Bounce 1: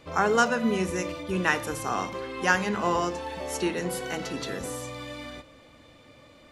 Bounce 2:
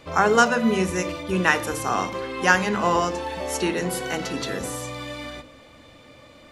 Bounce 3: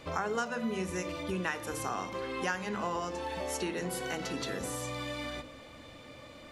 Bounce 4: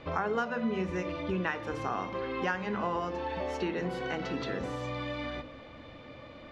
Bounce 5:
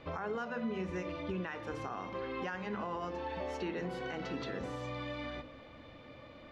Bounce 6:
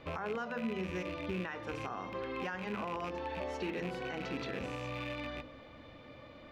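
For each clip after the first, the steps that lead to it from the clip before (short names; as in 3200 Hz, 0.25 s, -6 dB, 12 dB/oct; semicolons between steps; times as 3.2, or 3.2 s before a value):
notches 50/100/150/200/250/300/350/400/450/500 Hz; gain +5 dB
compressor 3:1, threshold -33 dBFS, peak gain reduction 16 dB; gain -1.5 dB
air absorption 230 m; gain +3 dB
limiter -24 dBFS, peak gain reduction 7.5 dB; gain -4.5 dB
rattling part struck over -44 dBFS, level -34 dBFS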